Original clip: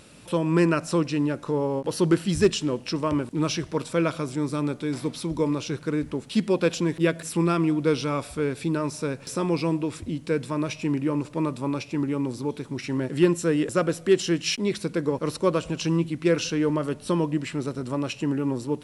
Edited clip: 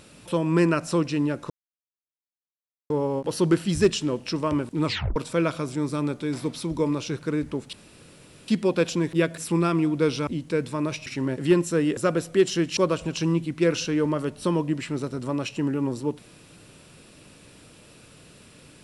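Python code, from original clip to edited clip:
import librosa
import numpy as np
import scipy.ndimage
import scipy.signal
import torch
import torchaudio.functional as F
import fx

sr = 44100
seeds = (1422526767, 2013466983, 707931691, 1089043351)

y = fx.edit(x, sr, fx.insert_silence(at_s=1.5, length_s=1.4),
    fx.tape_stop(start_s=3.45, length_s=0.31),
    fx.insert_room_tone(at_s=6.33, length_s=0.75),
    fx.cut(start_s=8.12, length_s=1.92),
    fx.cut(start_s=10.83, length_s=1.95),
    fx.cut(start_s=14.49, length_s=0.92), tone=tone)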